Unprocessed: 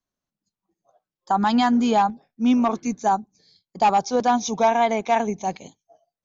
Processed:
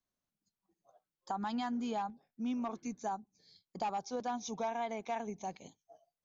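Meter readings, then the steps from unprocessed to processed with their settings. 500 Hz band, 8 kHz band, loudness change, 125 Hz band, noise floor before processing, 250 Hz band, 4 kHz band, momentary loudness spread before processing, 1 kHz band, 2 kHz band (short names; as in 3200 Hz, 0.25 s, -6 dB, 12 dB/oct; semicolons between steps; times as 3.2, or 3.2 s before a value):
-17.0 dB, n/a, -17.5 dB, -16.0 dB, under -85 dBFS, -17.0 dB, -17.0 dB, 7 LU, -18.0 dB, -17.5 dB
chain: compressor 2:1, threshold -41 dBFS, peak gain reduction 14.5 dB; gain -4.5 dB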